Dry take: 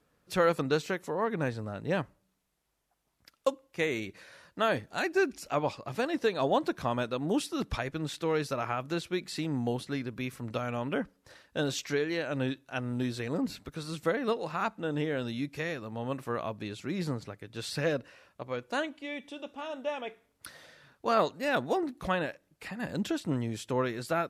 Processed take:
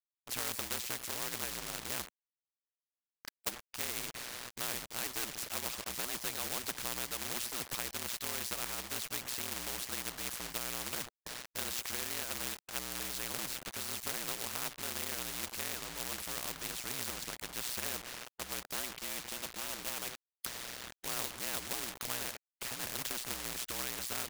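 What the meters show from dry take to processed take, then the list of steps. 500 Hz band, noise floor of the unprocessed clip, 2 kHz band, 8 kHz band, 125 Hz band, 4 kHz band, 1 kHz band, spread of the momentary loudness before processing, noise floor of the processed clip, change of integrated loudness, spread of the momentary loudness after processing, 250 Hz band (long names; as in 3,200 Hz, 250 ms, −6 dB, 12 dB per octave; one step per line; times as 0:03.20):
−16.5 dB, −75 dBFS, −6.0 dB, +10.5 dB, −15.5 dB, +2.0 dB, −10.5 dB, 11 LU, below −85 dBFS, −5.0 dB, 5 LU, −16.5 dB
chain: ring modulation 61 Hz
log-companded quantiser 4 bits
every bin compressed towards the loudest bin 4 to 1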